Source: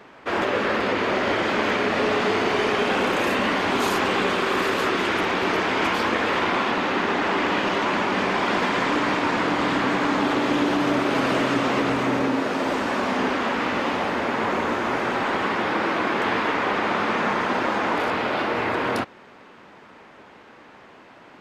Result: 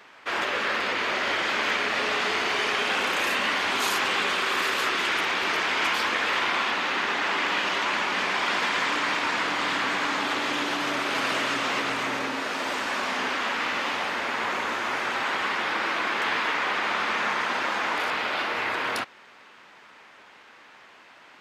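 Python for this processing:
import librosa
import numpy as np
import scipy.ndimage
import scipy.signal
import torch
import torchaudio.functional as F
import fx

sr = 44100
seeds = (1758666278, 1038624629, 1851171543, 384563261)

y = fx.tilt_shelf(x, sr, db=-8.5, hz=800.0)
y = F.gain(torch.from_numpy(y), -5.5).numpy()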